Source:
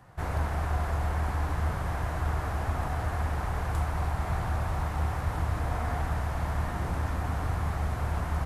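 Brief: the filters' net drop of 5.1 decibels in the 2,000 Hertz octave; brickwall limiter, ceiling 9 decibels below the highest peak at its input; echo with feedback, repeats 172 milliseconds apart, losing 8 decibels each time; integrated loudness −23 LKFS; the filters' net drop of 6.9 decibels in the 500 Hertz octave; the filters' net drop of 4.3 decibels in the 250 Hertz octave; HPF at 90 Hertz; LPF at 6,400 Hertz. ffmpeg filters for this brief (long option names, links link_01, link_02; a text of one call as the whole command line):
ffmpeg -i in.wav -af "highpass=90,lowpass=6400,equalizer=frequency=250:width_type=o:gain=-4.5,equalizer=frequency=500:width_type=o:gain=-8.5,equalizer=frequency=2000:width_type=o:gain=-6,alimiter=level_in=7.5dB:limit=-24dB:level=0:latency=1,volume=-7.5dB,aecho=1:1:172|344|516|688|860:0.398|0.159|0.0637|0.0255|0.0102,volume=17dB" out.wav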